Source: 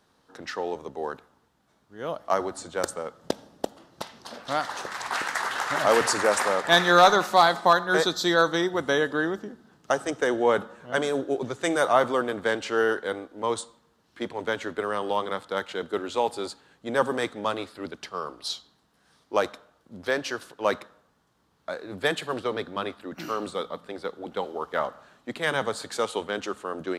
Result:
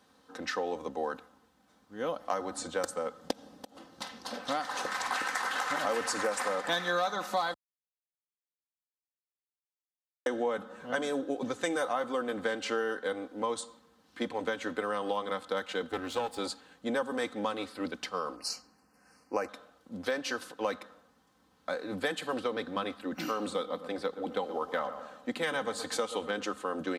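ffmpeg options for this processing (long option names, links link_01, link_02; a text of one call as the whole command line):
ffmpeg -i in.wav -filter_complex "[0:a]asettb=1/sr,asplit=3[link_01][link_02][link_03];[link_01]atrim=end=3.324[link_04];[link_02]atrim=start=3.32:end=4.02,asetpts=PTS-STARTPTS,afade=type=in:duration=0.004:curve=qsin,afade=type=out:start_time=0.696:duration=0.004:curve=qsin,acompressor=threshold=-43dB:ratio=8:attack=3.2:release=140:knee=1:detection=peak[link_05];[link_03]atrim=start=4.016[link_06];[link_04][link_05]acrossfade=duration=0.004:curve1=hsin:curve2=qsin[link_07];[link_07][link_06]acrossfade=duration=0.004:curve1=qsin:curve2=hsin,asettb=1/sr,asplit=3[link_08][link_09][link_10];[link_08]atrim=end=15.894[link_11];[link_09]atrim=start=15.89:end=16.38,asetpts=PTS-STARTPTS,afade=type=in:duration=0.004:curve=qsin,afade=type=out:start_time=0.486:duration=0.004:curve=qsin,aeval=exprs='if(lt(val(0),0),0.251*val(0),val(0))':channel_layout=same[link_12];[link_10]atrim=start=16.376[link_13];[link_11][link_12]acrossfade=duration=0.004:curve1=hsin:curve2=qsin[link_14];[link_14][link_13]acrossfade=duration=0.004:curve1=qsin:curve2=hsin,asettb=1/sr,asplit=3[link_15][link_16][link_17];[link_15]atrim=end=18.364[link_18];[link_16]atrim=start=18.36:end=19.49,asetpts=PTS-STARTPTS,afade=type=in:duration=0.004:curve=qsin,afade=type=out:start_time=1.126:duration=0.004:curve=qsin,asuperstop=centerf=3500:order=8:qfactor=2.2[link_19];[link_17]atrim=start=19.486[link_20];[link_18][link_19]acrossfade=duration=0.004:curve1=hsin:curve2=qsin[link_21];[link_21][link_20]acrossfade=duration=0.004:curve1=qsin:curve2=hsin,asettb=1/sr,asplit=3[link_22][link_23][link_24];[link_22]atrim=end=23.394[link_25];[link_23]atrim=start=23.39:end=26.43,asetpts=PTS-STARTPTS,afade=type=in:duration=0.004:curve=qsin,afade=type=out:start_time=3.036:duration=0.004:curve=qsin,asplit=2[link_26][link_27];[link_27]adelay=122,lowpass=frequency=2000:poles=1,volume=-14dB,asplit=2[link_28][link_29];[link_29]adelay=122,lowpass=frequency=2000:poles=1,volume=0.46,asplit=2[link_30][link_31];[link_31]adelay=122,lowpass=frequency=2000:poles=1,volume=0.46,asplit=2[link_32][link_33];[link_33]adelay=122,lowpass=frequency=2000:poles=1,volume=0.46[link_34];[link_26][link_28][link_30][link_32][link_34]amix=inputs=5:normalize=0,atrim=end_sample=134064[link_35];[link_24]atrim=start=26.426[link_36];[link_25][link_35]acrossfade=duration=0.004:curve1=hsin:curve2=qsin[link_37];[link_37][link_36]acrossfade=duration=0.004:curve1=qsin:curve2=hsin,asplit=3[link_38][link_39][link_40];[link_38]atrim=end=7.54,asetpts=PTS-STARTPTS,afade=type=out:start_time=7.536:duration=0.004:curve=hsin[link_41];[link_39]atrim=start=7.54:end=10.26,asetpts=PTS-STARTPTS,volume=0[link_42];[link_40]atrim=start=10.26,asetpts=PTS-STARTPTS,afade=type=in:duration=0.004:curve=hsin[link_43];[link_41][link_42][link_43]concat=n=3:v=0:a=1,highpass=65,aecho=1:1:3.9:0.6,acompressor=threshold=-29dB:ratio=5" out.wav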